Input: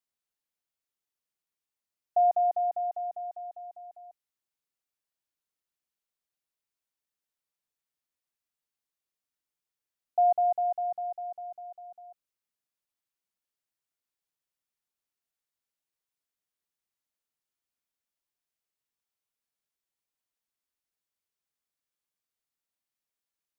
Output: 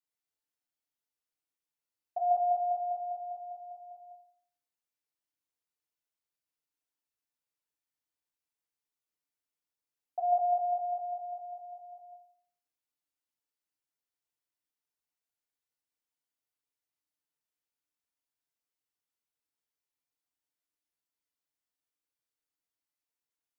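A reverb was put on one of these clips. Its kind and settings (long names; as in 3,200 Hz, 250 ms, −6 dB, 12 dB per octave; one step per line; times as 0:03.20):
feedback delay network reverb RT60 0.59 s, low-frequency decay 0.75×, high-frequency decay 0.8×, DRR −2 dB
level −7.5 dB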